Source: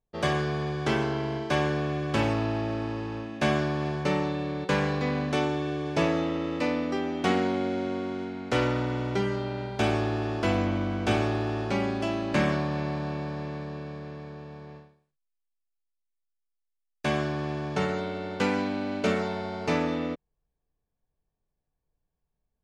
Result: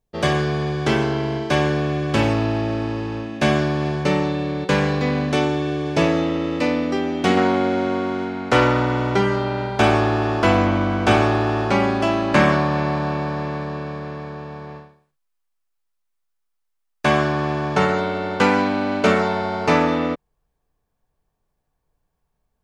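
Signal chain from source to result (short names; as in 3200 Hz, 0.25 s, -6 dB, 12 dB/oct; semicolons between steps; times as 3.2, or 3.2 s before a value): bell 1100 Hz -2 dB 1.5 oct, from 7.37 s +6 dB; gain +7.5 dB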